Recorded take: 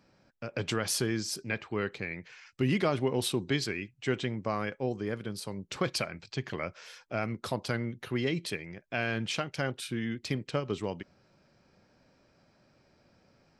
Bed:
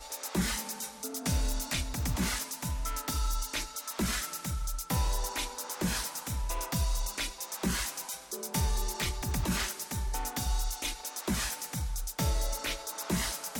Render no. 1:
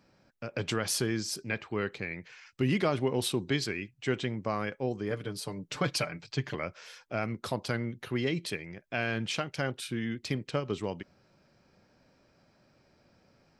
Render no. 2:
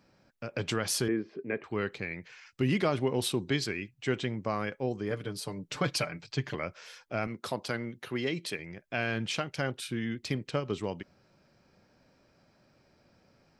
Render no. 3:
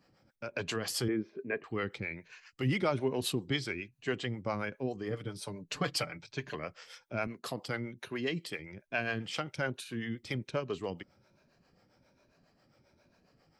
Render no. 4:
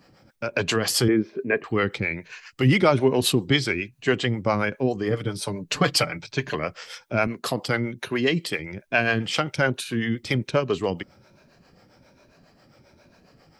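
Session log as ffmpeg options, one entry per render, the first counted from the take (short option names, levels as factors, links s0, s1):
-filter_complex "[0:a]asettb=1/sr,asplit=3[s0][s1][s2];[s0]atrim=end=5.104[s3];[s1]atrim=start=5.1:end=6.55,asetpts=PTS-STARTPTS,afade=t=in:d=0.004:c=qsin,afade=t=out:st=1.446:d=0.004:c=qsin,aecho=1:1:6.8:0.65,atrim=end_sample=63945[s4];[s2]atrim=start=6.546[s5];[s3][s4]acrossfade=d=0.004:c1=hsin:c2=qsin[s6];[s6][s5]acrossfade=d=0.004:c1=qsin:c2=hsin"
-filter_complex "[0:a]asettb=1/sr,asplit=3[s0][s1][s2];[s0]atrim=end=1.084[s3];[s1]atrim=start=1.08:end=1.64,asetpts=PTS-STARTPTS,afade=t=in:d=0.004:c=qsin,afade=t=out:st=0.556:d=0.004:c=qsin,highpass=180,equalizer=f=280:t=q:w=4:g=5,equalizer=f=420:t=q:w=4:g=10,equalizer=f=870:t=q:w=4:g=-5,equalizer=f=1400:t=q:w=4:g=-5,lowpass=f=2100:w=0.5412,lowpass=f=2100:w=1.3066[s4];[s2]atrim=start=1.636[s5];[s3][s4]acrossfade=d=0.004:c1=hsin:c2=qsin[s6];[s6][s5]acrossfade=d=0.004:c1=qsin:c2=hsin,asettb=1/sr,asplit=3[s7][s8][s9];[s7]atrim=end=7.274[s10];[s8]atrim=start=7.27:end=8.59,asetpts=PTS-STARTPTS,afade=t=in:d=0.004:c=qsin,afade=t=out:st=1.316:d=0.004:c=qsin,highpass=f=210:p=1[s11];[s9]atrim=start=8.586[s12];[s10][s11]acrossfade=d=0.004:c1=hsin:c2=qsin[s13];[s13][s12]acrossfade=d=0.004:c1=qsin:c2=hsin"
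-filter_complex "[0:a]afftfilt=real='re*pow(10,6/40*sin(2*PI*(1.5*log(max(b,1)*sr/1024/100)/log(2)-(1.2)*(pts-256)/sr)))':imag='im*pow(10,6/40*sin(2*PI*(1.5*log(max(b,1)*sr/1024/100)/log(2)-(1.2)*(pts-256)/sr)))':win_size=1024:overlap=0.75,acrossover=split=400[s0][s1];[s0]aeval=exprs='val(0)*(1-0.7/2+0.7/2*cos(2*PI*7.4*n/s))':c=same[s2];[s1]aeval=exprs='val(0)*(1-0.7/2-0.7/2*cos(2*PI*7.4*n/s))':c=same[s3];[s2][s3]amix=inputs=2:normalize=0"
-af "volume=3.98"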